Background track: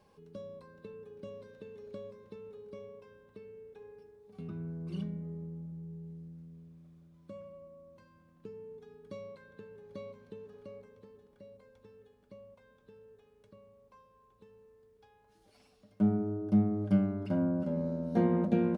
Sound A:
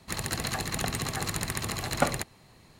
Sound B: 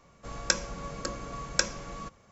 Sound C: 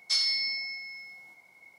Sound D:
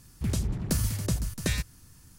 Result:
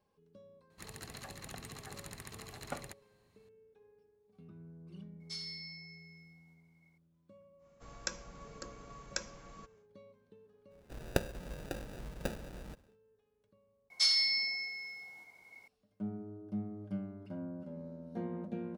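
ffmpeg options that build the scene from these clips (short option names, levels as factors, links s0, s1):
-filter_complex "[3:a]asplit=2[s0][s1];[2:a]asplit=2[s2][s3];[0:a]volume=0.237[s4];[s3]acrusher=samples=41:mix=1:aa=0.000001[s5];[1:a]atrim=end=2.79,asetpts=PTS-STARTPTS,volume=0.15,afade=t=in:d=0.004:c=hsin,afade=t=out:st=2.786:d=0.004:c=hsin,adelay=700[s6];[s0]atrim=end=1.78,asetpts=PTS-STARTPTS,volume=0.141,afade=t=in:d=0.004:c=hsin,afade=t=out:st=1.776:d=0.004:c=hsin,adelay=5200[s7];[s2]atrim=end=2.31,asetpts=PTS-STARTPTS,volume=0.237,afade=t=in:d=0.1,afade=t=out:st=2.21:d=0.1,adelay=7570[s8];[s5]atrim=end=2.31,asetpts=PTS-STARTPTS,volume=0.473,afade=t=in:d=0.1,afade=t=out:st=2.21:d=0.1,adelay=470106S[s9];[s1]atrim=end=1.78,asetpts=PTS-STARTPTS,volume=0.841,afade=t=in:d=0.004:c=hsin,afade=t=out:st=1.776:d=0.004:c=hsin,adelay=13900[s10];[s4][s6][s7][s8][s9][s10]amix=inputs=6:normalize=0"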